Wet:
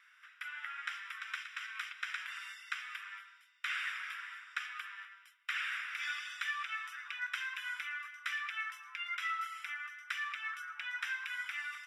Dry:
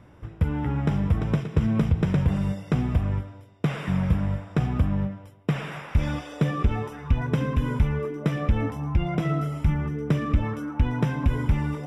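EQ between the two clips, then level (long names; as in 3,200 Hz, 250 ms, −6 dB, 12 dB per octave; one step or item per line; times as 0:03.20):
Butterworth high-pass 1,400 Hz 48 dB per octave
high-shelf EQ 4,100 Hz −9.5 dB
+4.5 dB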